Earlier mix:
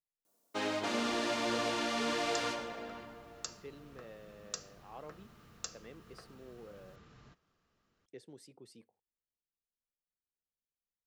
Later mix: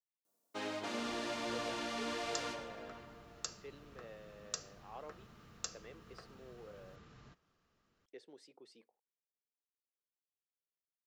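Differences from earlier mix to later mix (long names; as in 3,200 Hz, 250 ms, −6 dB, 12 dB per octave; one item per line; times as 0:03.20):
speech: add band-pass filter 380–5,500 Hz
first sound −6.0 dB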